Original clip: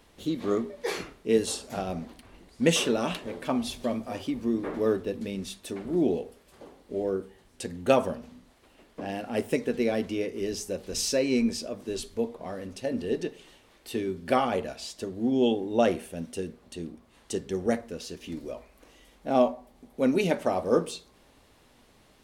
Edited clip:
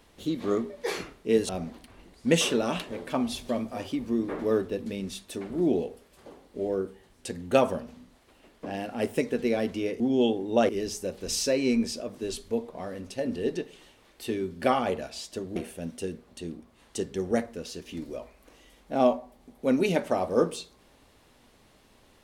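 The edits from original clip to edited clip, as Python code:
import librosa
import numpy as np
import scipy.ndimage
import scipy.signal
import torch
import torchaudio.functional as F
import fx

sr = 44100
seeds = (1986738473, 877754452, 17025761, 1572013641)

y = fx.edit(x, sr, fx.cut(start_s=1.49, length_s=0.35),
    fx.move(start_s=15.22, length_s=0.69, to_s=10.35), tone=tone)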